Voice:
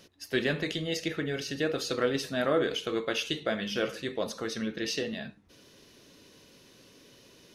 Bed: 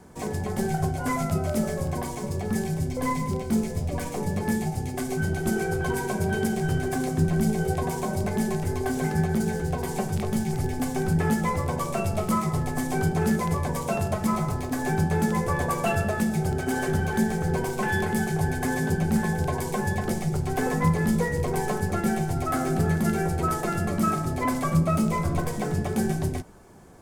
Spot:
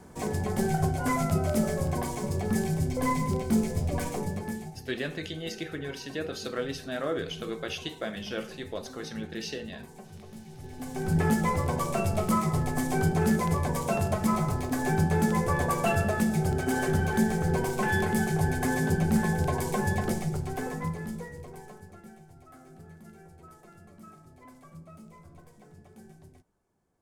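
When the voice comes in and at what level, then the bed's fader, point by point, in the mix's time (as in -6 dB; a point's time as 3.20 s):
4.55 s, -4.5 dB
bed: 4.09 s -0.5 dB
5.00 s -19.5 dB
10.53 s -19.5 dB
11.18 s -1 dB
20.04 s -1 dB
22.21 s -26 dB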